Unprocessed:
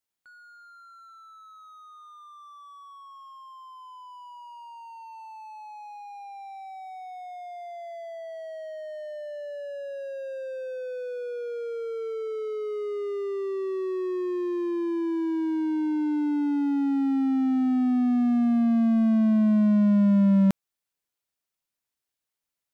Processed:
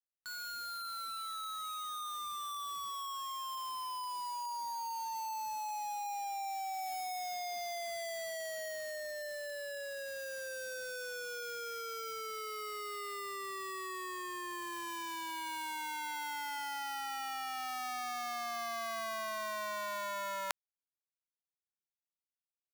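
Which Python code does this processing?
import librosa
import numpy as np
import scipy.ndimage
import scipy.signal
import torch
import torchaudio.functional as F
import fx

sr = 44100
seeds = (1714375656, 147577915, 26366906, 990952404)

y = fx.tracing_dist(x, sr, depth_ms=0.022)
y = scipy.signal.sosfilt(scipy.signal.butter(4, 860.0, 'highpass', fs=sr, output='sos'), y)
y = fx.high_shelf(y, sr, hz=2500.0, db=3.5)
y = fx.quant_dither(y, sr, seeds[0], bits=8, dither='none')
y = y * 10.0 ** (4.5 / 20.0)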